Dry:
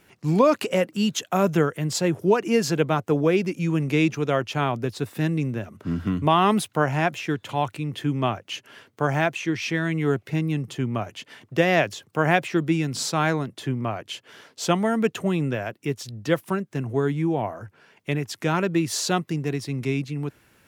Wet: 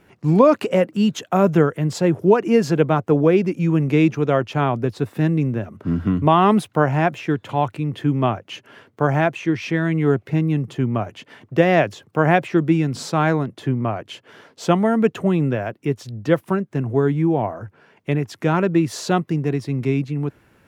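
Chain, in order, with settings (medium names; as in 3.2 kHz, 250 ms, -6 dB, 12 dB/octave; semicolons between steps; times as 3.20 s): treble shelf 2.4 kHz -12 dB; trim +5.5 dB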